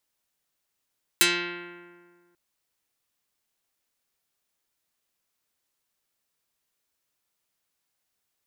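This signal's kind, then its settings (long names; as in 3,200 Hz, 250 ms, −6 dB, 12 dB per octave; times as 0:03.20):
Karplus-Strong string F3, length 1.14 s, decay 1.80 s, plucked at 0.29, dark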